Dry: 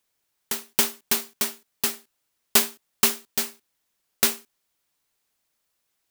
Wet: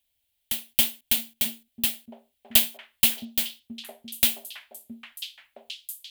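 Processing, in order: EQ curve 100 Hz 0 dB, 150 Hz -28 dB, 250 Hz -8 dB, 410 Hz -25 dB, 620 Hz -10 dB, 1200 Hz -24 dB, 3200 Hz -2 dB, 5600 Hz -16 dB, 8900 Hz -10 dB, 13000 Hz -6 dB; delay with a stepping band-pass 0.667 s, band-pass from 210 Hz, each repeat 1.4 oct, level -2 dB; gain +7.5 dB

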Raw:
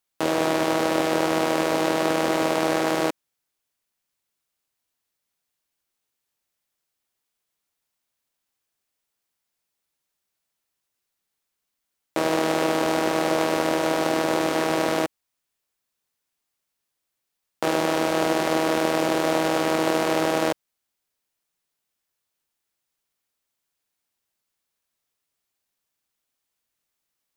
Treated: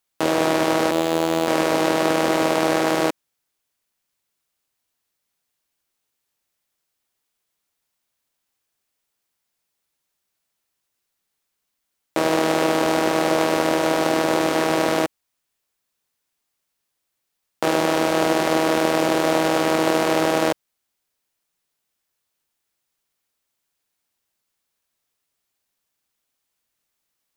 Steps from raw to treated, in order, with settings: 0.91–1.48 robotiser 81.8 Hz; gain +3 dB

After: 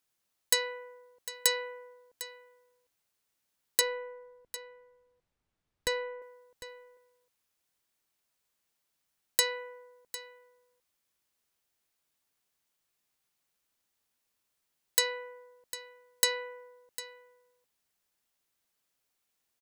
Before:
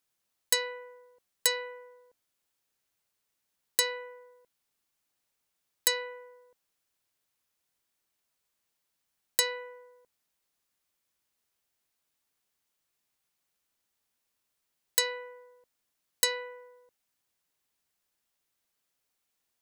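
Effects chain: 3.81–6.22 RIAA curve playback; echo 0.752 s -15 dB

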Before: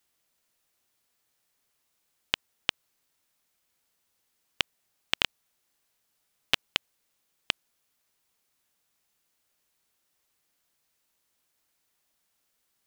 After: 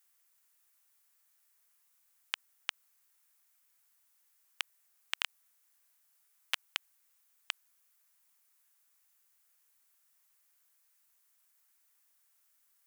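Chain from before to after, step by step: HPF 1400 Hz 12 dB/oct; bell 3600 Hz -10.5 dB 2 oct; limiter -18 dBFS, peak gain reduction 6 dB; gain +6.5 dB

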